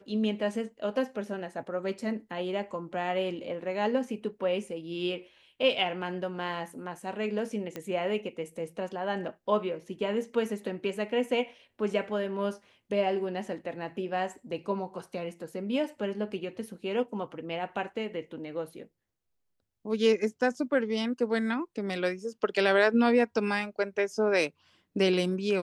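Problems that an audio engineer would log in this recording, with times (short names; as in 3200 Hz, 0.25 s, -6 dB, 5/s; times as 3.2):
7.76 pop -21 dBFS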